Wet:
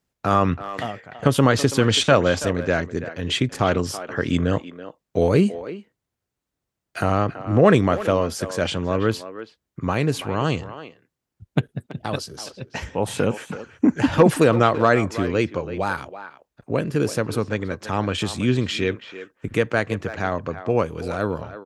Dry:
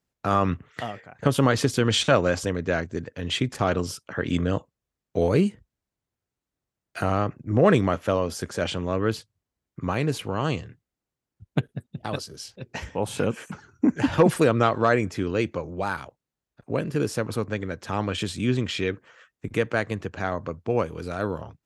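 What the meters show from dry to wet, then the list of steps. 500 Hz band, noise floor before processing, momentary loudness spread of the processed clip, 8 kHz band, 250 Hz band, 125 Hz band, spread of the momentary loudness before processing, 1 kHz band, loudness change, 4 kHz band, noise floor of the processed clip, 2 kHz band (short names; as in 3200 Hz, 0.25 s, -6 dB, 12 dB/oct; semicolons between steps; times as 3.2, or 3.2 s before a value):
+3.5 dB, under -85 dBFS, 16 LU, +3.5 dB, +3.5 dB, +3.5 dB, 13 LU, +4.0 dB, +3.5 dB, +3.5 dB, -83 dBFS, +3.5 dB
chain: speakerphone echo 0.33 s, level -12 dB; gain +3.5 dB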